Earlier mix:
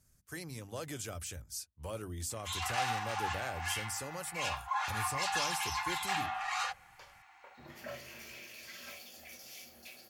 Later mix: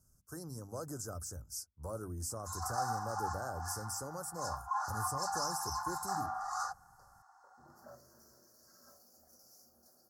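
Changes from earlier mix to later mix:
second sound -9.0 dB; master: add elliptic band-stop 1.4–5.2 kHz, stop band 50 dB

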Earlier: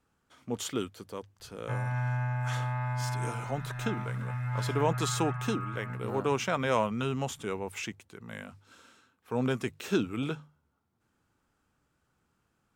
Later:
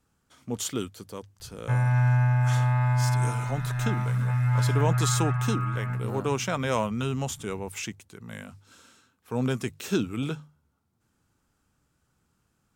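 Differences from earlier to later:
background +5.0 dB; master: add tone controls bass +5 dB, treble +7 dB

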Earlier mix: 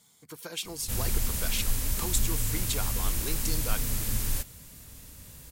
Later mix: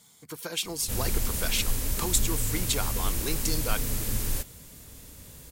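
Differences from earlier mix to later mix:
speech +4.5 dB; background: add peaking EQ 410 Hz +5.5 dB 1.3 oct

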